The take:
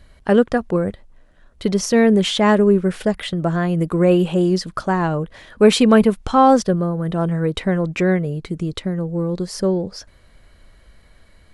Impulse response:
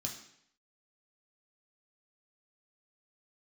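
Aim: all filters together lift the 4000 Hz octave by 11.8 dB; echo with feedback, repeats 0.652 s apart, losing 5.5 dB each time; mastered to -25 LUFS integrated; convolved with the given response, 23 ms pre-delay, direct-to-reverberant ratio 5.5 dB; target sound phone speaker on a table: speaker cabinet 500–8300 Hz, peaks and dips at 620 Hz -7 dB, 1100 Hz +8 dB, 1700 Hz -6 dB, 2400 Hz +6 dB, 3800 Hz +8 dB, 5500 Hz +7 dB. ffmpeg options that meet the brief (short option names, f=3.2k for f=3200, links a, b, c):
-filter_complex "[0:a]equalizer=f=4k:t=o:g=7.5,aecho=1:1:652|1304|1956|2608|3260|3912|4564:0.531|0.281|0.149|0.079|0.0419|0.0222|0.0118,asplit=2[a][b];[1:a]atrim=start_sample=2205,adelay=23[c];[b][c]afir=irnorm=-1:irlink=0,volume=-4.5dB[d];[a][d]amix=inputs=2:normalize=0,highpass=f=500:w=0.5412,highpass=f=500:w=1.3066,equalizer=f=620:t=q:w=4:g=-7,equalizer=f=1.1k:t=q:w=4:g=8,equalizer=f=1.7k:t=q:w=4:g=-6,equalizer=f=2.4k:t=q:w=4:g=6,equalizer=f=3.8k:t=q:w=4:g=8,equalizer=f=5.5k:t=q:w=4:g=7,lowpass=f=8.3k:w=0.5412,lowpass=f=8.3k:w=1.3066,volume=-9dB"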